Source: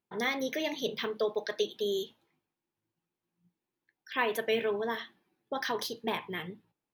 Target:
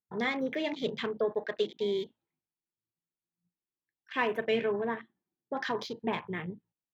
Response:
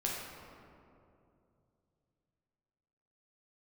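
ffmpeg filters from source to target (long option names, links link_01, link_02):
-filter_complex "[0:a]asettb=1/sr,asplit=3[link_01][link_02][link_03];[link_01]atrim=end=2.024[link_04];[link_02]atrim=start=2.02:end=4.43,asetpts=PTS-STARTPTS,afade=type=in:duration=0.004:curve=qsin,afade=type=out:start_time=2.406:duration=0.004:curve=qsin,acrusher=bits=5:mode=log:mix=0:aa=0.000001[link_05];[link_03]atrim=start=4.426[link_06];[link_04][link_05]acrossfade=duration=0.004:curve1=hsin:curve2=qsin[link_07];[link_07][link_06]acrossfade=duration=0.004:curve1=qsin:curve2=hsin,asettb=1/sr,asplit=3[link_08][link_09][link_10];[link_08]atrim=end=4.944[link_11];[link_09]atrim=start=4.94:end=5.54,asetpts=PTS-STARTPTS,afade=type=in:duration=0.004:curve=qsin,afade=type=out:start_time=0.596:duration=0.004:curve=qsin,highshelf=frequency=2200:gain=-10[link_12];[link_10]atrim=start=5.536[link_13];[link_11][link_12]acrossfade=duration=0.004:curve1=hsin:curve2=qsin[link_14];[link_14][link_13]acrossfade=duration=0.004:curve1=qsin:curve2=hsin,afwtdn=0.00631,bass=frequency=250:gain=6,treble=frequency=4000:gain=-7"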